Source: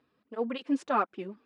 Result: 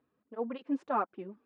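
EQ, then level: high shelf 2500 Hz -11.5 dB; dynamic EQ 880 Hz, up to +4 dB, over -42 dBFS, Q 1.5; high shelf 5400 Hz -7.5 dB; -4.0 dB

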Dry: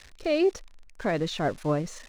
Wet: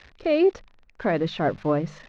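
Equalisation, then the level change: HPF 47 Hz 6 dB/oct; air absorption 230 m; notches 50/100/150/200 Hz; +4.5 dB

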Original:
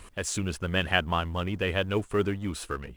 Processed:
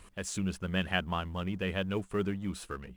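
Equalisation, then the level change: bell 190 Hz +9.5 dB 0.2 oct; -6.5 dB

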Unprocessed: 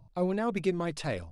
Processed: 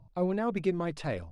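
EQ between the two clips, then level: high shelf 3900 Hz -9.5 dB; 0.0 dB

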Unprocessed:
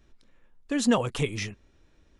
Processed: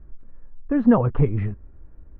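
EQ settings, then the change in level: LPF 1500 Hz 24 dB/oct; low shelf 82 Hz +9.5 dB; low shelf 210 Hz +7 dB; +3.5 dB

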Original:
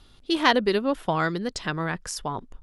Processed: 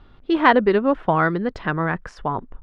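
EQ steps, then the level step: Chebyshev low-pass 1600 Hz, order 2; +6.5 dB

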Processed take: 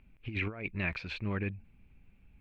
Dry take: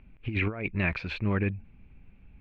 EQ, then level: high shelf 3800 Hz +9.5 dB; -7.0 dB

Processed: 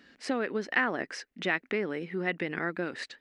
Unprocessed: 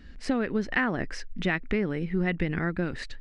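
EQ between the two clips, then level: HPF 330 Hz 12 dB/oct; 0.0 dB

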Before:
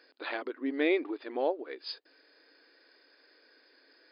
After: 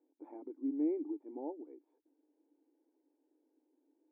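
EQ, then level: vocal tract filter u; 0.0 dB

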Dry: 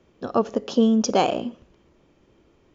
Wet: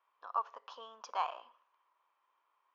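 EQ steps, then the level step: ladder high-pass 960 Hz, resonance 75%; air absorption 180 m; -3.0 dB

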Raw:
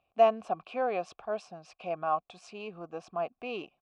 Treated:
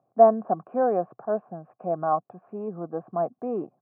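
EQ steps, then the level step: Chebyshev band-pass 120–1700 Hz, order 4; tilt shelf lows +9.5 dB, about 1100 Hz; +3.0 dB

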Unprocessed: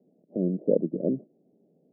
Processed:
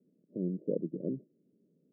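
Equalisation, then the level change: dynamic EQ 230 Hz, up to -5 dB, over -41 dBFS, Q 2.4; running mean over 57 samples; -3.5 dB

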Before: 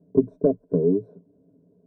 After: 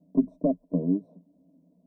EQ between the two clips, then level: fixed phaser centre 420 Hz, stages 6; 0.0 dB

